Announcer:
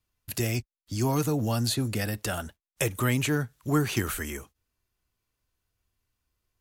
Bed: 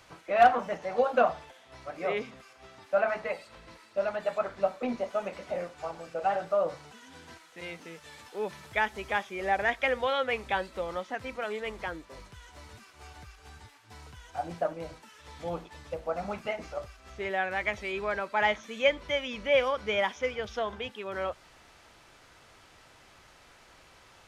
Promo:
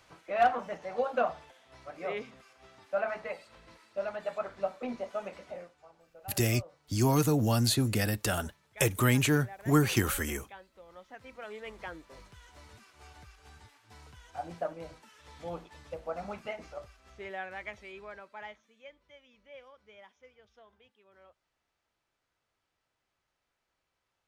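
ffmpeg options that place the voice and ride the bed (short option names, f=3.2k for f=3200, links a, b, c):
-filter_complex "[0:a]adelay=6000,volume=0.5dB[a];[1:a]volume=10.5dB,afade=t=out:st=5.32:d=0.49:silence=0.177828,afade=t=in:st=10.84:d=1.27:silence=0.16788,afade=t=out:st=16.23:d=2.52:silence=0.0794328[b];[a][b]amix=inputs=2:normalize=0"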